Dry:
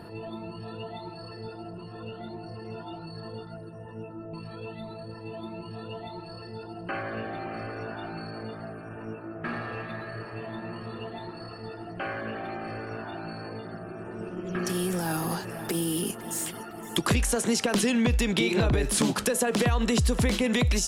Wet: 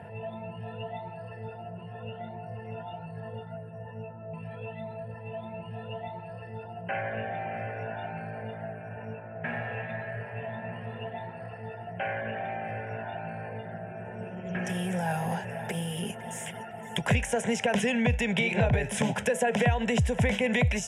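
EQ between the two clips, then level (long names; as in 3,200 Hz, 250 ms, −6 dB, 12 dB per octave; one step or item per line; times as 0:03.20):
high-pass filter 80 Hz 24 dB per octave
high-frequency loss of the air 77 metres
phaser with its sweep stopped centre 1,200 Hz, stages 6
+4.0 dB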